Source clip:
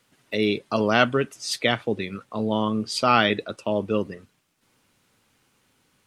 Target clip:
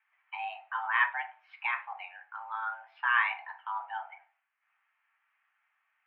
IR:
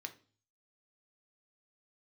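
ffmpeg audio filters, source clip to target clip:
-filter_complex "[1:a]atrim=start_sample=2205,asetrate=48510,aresample=44100[link_01];[0:a][link_01]afir=irnorm=-1:irlink=0,highpass=frequency=570:width_type=q:width=0.5412,highpass=frequency=570:width_type=q:width=1.307,lowpass=frequency=2000:width_type=q:width=0.5176,lowpass=frequency=2000:width_type=q:width=0.7071,lowpass=frequency=2000:width_type=q:width=1.932,afreqshift=350"

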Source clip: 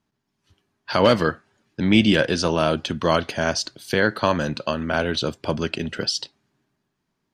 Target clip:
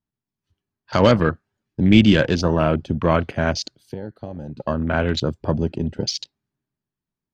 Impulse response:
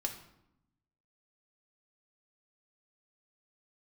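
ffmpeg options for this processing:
-filter_complex "[0:a]lowshelf=frequency=150:gain=12,asettb=1/sr,asplit=3[link_01][link_02][link_03];[link_01]atrim=end=3.814[link_04];[link_02]atrim=start=3.81:end=4.58,asetpts=PTS-STARTPTS,afade=type=in:duration=0.004:curve=qsin,afade=type=out:start_time=0.766:duration=0.004:curve=qsin,acompressor=threshold=-38dB:ratio=2[link_05];[link_03]atrim=start=4.576[link_06];[link_04][link_05]acrossfade=duration=0.004:curve1=hsin:curve2=qsin[link_07];[link_07][link_06]acrossfade=duration=0.004:curve1=qsin:curve2=hsin,afwtdn=0.0355"

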